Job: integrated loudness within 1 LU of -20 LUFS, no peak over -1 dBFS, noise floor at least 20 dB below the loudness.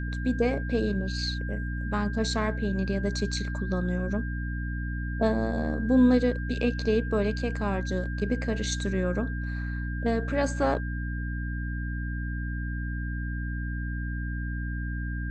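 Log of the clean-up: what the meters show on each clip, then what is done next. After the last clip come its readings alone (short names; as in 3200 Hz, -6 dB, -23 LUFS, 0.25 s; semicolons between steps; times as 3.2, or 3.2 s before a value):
hum 60 Hz; harmonics up to 300 Hz; hum level -29 dBFS; steady tone 1600 Hz; tone level -39 dBFS; loudness -29.0 LUFS; peak -11.0 dBFS; loudness target -20.0 LUFS
-> de-hum 60 Hz, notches 5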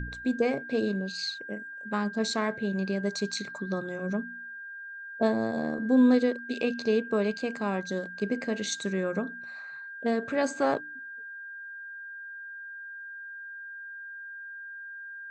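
hum none; steady tone 1600 Hz; tone level -39 dBFS
-> notch 1600 Hz, Q 30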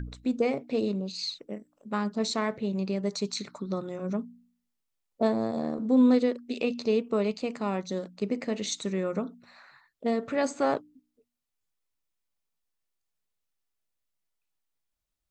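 steady tone none; loudness -29.5 LUFS; peak -13.0 dBFS; loudness target -20.0 LUFS
-> gain +9.5 dB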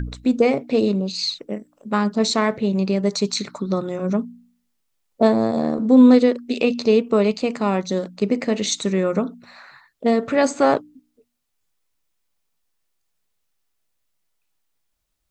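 loudness -20.0 LUFS; peak -3.5 dBFS; noise floor -73 dBFS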